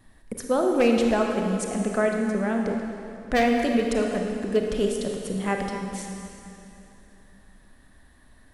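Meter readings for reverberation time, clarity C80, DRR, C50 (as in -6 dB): 2.9 s, 3.5 dB, 1.5 dB, 2.5 dB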